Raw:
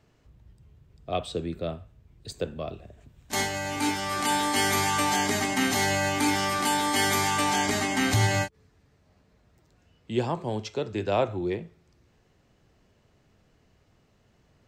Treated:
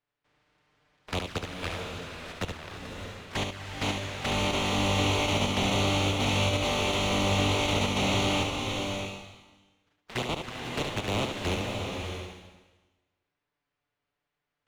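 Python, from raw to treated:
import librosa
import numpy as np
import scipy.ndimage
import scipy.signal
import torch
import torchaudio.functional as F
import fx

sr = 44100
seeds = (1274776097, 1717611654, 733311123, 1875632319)

p1 = fx.spec_flatten(x, sr, power=0.11)
p2 = scipy.signal.sosfilt(scipy.signal.butter(2, 2500.0, 'lowpass', fs=sr, output='sos'), p1)
p3 = fx.peak_eq(p2, sr, hz=87.0, db=6.5, octaves=0.52)
p4 = fx.level_steps(p3, sr, step_db=17)
p5 = fx.leveller(p4, sr, passes=2)
p6 = fx.env_flanger(p5, sr, rest_ms=6.9, full_db=-29.0)
p7 = 10.0 ** (-26.0 / 20.0) * np.tanh(p6 / 10.0 ** (-26.0 / 20.0))
p8 = p7 + fx.echo_single(p7, sr, ms=71, db=-6.0, dry=0)
p9 = fx.rev_bloom(p8, sr, seeds[0], attack_ms=610, drr_db=2.5)
y = F.gain(torch.from_numpy(p9), 3.5).numpy()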